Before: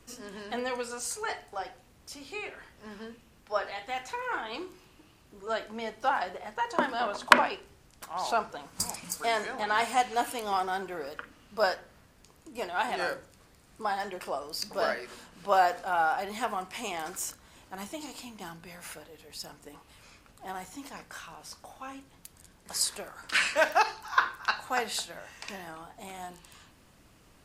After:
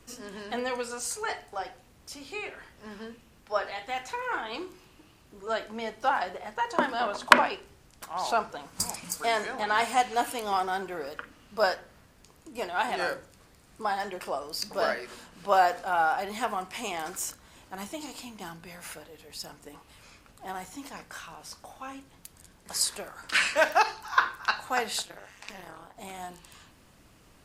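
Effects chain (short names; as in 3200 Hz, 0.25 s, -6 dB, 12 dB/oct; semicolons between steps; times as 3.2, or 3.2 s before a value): 25.02–25.97 AM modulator 200 Hz, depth 95%; gain +1.5 dB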